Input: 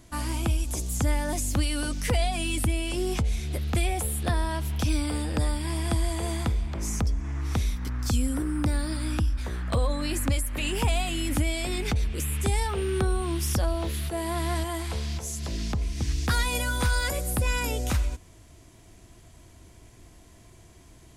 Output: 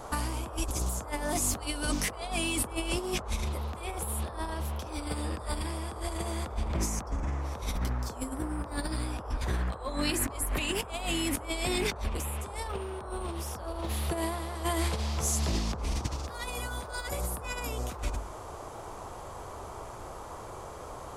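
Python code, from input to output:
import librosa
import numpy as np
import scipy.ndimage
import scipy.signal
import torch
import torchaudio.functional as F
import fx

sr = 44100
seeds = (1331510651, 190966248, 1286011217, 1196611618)

y = fx.hum_notches(x, sr, base_hz=50, count=7)
y = fx.over_compress(y, sr, threshold_db=-32.0, ratio=-0.5)
y = fx.dmg_noise_band(y, sr, seeds[0], low_hz=360.0, high_hz=1200.0, level_db=-44.0)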